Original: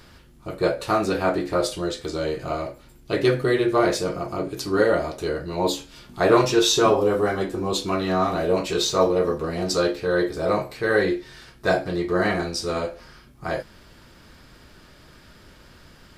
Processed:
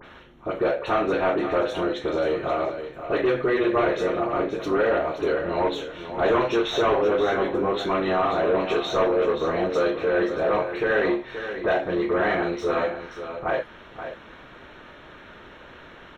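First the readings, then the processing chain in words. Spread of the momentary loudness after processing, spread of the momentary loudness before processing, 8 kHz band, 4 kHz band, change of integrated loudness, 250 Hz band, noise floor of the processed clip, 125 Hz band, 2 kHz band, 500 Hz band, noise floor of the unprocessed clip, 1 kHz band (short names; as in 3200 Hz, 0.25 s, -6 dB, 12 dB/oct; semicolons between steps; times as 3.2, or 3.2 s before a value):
10 LU, 11 LU, under -15 dB, -6.5 dB, -1.0 dB, -2.0 dB, -46 dBFS, -7.0 dB, 0.0 dB, 0.0 dB, -50 dBFS, +0.5 dB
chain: tone controls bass -14 dB, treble +3 dB; in parallel at +2 dB: compressor, threshold -30 dBFS, peak gain reduction 16 dB; on the sum: AM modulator 140 Hz, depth 35%; soft clip -20.5 dBFS, distortion -10 dB; Butterworth band-stop 4800 Hz, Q 3.2; air absorption 310 m; dispersion highs, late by 52 ms, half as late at 3000 Hz; on a send: echo 0.528 s -10 dB; on the sum: gain +5 dB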